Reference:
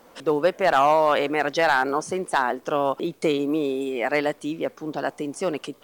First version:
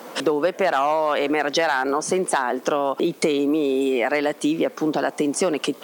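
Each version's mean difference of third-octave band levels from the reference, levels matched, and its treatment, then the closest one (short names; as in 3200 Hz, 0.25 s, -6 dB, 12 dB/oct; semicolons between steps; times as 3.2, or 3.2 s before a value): 4.5 dB: in parallel at +2.5 dB: limiter -21.5 dBFS, peak gain reduction 11 dB; on the sum: compressor, threshold -24 dBFS, peak gain reduction 12 dB; HPF 170 Hz 24 dB/oct; gain +6.5 dB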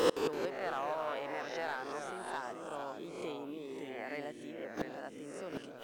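8.0 dB: spectral swells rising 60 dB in 0.77 s; flipped gate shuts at -24 dBFS, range -29 dB; echoes that change speed 0.166 s, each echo -2 st, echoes 2, each echo -6 dB; gain +8 dB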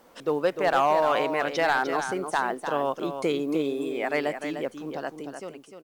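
3.5 dB: ending faded out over 1.06 s; requantised 12-bit, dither triangular; echo 0.301 s -8 dB; gain -4 dB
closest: third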